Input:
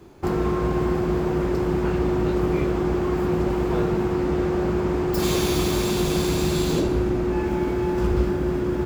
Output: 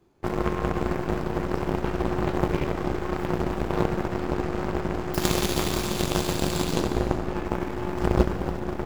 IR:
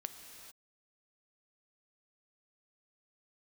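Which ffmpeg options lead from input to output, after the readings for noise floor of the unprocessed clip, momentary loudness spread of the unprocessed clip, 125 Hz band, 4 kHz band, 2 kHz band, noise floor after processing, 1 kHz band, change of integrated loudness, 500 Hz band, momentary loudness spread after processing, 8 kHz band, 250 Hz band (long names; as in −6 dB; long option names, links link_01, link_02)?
−25 dBFS, 2 LU, −3.5 dB, −1.5 dB, −0.5 dB, −32 dBFS, −0.5 dB, −4.0 dB, −5.0 dB, 5 LU, −1.0 dB, −5.0 dB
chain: -filter_complex "[0:a]aeval=exprs='0.335*(cos(1*acos(clip(val(0)/0.335,-1,1)))-cos(1*PI/2))+0.106*(cos(3*acos(clip(val(0)/0.335,-1,1)))-cos(3*PI/2))+0.00237*(cos(5*acos(clip(val(0)/0.335,-1,1)))-cos(5*PI/2))+0.0075*(cos(8*acos(clip(val(0)/0.335,-1,1)))-cos(8*PI/2))':channel_layout=same,asplit=2[link_01][link_02];[1:a]atrim=start_sample=2205,asetrate=52920,aresample=44100[link_03];[link_02][link_03]afir=irnorm=-1:irlink=0,volume=7.5dB[link_04];[link_01][link_04]amix=inputs=2:normalize=0,volume=-1.5dB"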